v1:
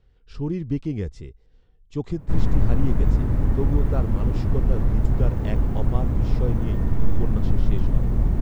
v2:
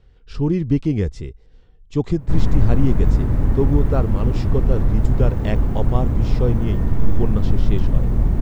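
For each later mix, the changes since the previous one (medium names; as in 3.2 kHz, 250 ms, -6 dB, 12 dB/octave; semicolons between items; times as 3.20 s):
speech +7.5 dB; background +3.0 dB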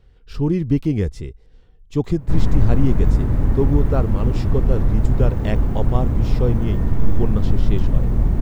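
speech: remove low-pass 8.1 kHz 24 dB/octave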